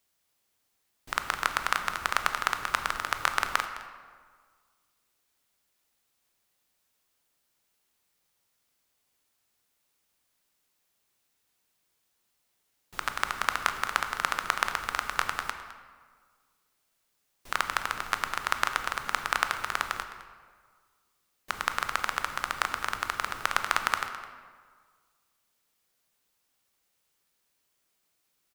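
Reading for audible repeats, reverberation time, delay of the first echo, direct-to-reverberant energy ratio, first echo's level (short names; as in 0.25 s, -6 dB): 1, 1.7 s, 0.21 s, 7.0 dB, -16.5 dB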